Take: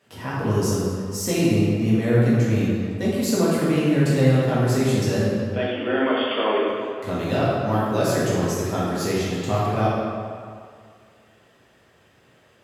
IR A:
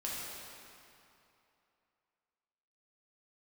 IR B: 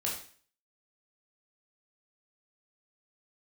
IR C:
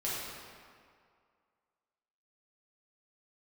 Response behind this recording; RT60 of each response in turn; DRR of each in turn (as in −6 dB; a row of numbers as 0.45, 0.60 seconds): C; 2.8, 0.45, 2.1 seconds; −6.5, −4.0, −8.5 decibels